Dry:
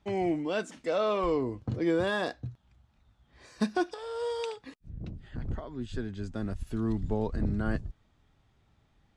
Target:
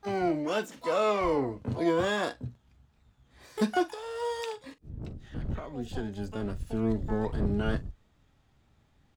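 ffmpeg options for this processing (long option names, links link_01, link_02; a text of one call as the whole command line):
ffmpeg -i in.wav -filter_complex "[0:a]aecho=1:1:14|44:0.188|0.158,asplit=2[link_01][link_02];[link_02]asetrate=88200,aresample=44100,atempo=0.5,volume=-8dB[link_03];[link_01][link_03]amix=inputs=2:normalize=0" out.wav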